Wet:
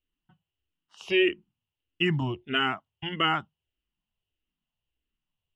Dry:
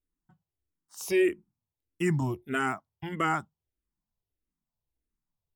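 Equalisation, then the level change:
low-pass with resonance 2,900 Hz, resonance Q 8.4
parametric band 2,300 Hz −4.5 dB 0.25 octaves
0.0 dB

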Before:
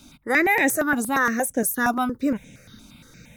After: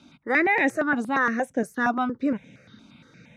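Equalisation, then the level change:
band-pass filter 120–3,400 Hz
−1.5 dB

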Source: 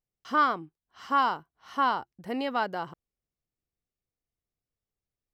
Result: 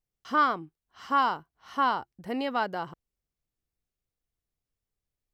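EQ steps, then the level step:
low-shelf EQ 64 Hz +7.5 dB
0.0 dB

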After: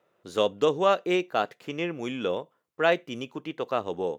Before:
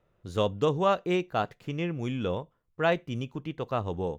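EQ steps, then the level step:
high-pass filter 310 Hz 12 dB per octave
dynamic equaliser 950 Hz, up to −4 dB, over −40 dBFS, Q 1.7
+4.5 dB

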